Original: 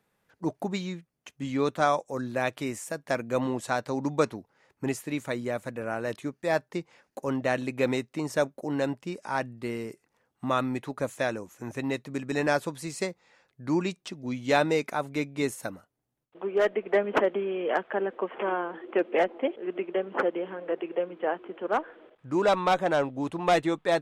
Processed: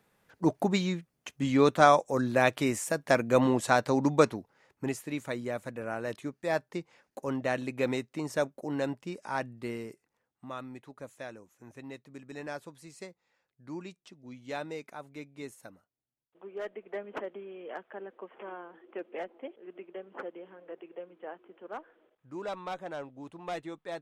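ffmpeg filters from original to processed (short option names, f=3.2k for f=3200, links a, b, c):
-af "volume=4dB,afade=t=out:st=3.9:d=1.02:silence=0.421697,afade=t=out:st=9.7:d=0.76:silence=0.298538"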